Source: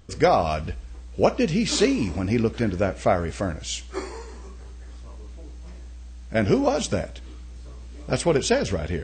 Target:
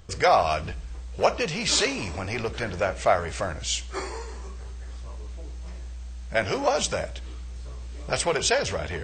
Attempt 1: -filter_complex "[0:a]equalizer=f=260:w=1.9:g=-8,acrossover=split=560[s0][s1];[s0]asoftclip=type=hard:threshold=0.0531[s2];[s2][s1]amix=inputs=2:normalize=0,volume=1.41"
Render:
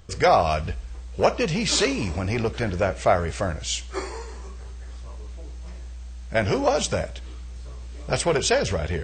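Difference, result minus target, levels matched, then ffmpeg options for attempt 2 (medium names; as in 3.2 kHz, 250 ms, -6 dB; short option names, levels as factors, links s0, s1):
hard clipper: distortion -7 dB
-filter_complex "[0:a]equalizer=f=260:w=1.9:g=-8,acrossover=split=560[s0][s1];[s0]asoftclip=type=hard:threshold=0.0178[s2];[s2][s1]amix=inputs=2:normalize=0,volume=1.41"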